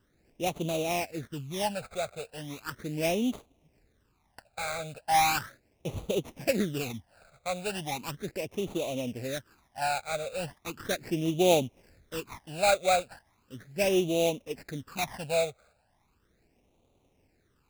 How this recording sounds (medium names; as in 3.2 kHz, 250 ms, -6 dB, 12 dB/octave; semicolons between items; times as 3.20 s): aliases and images of a low sample rate 3.2 kHz, jitter 20%; phasing stages 12, 0.37 Hz, lowest notch 300–1700 Hz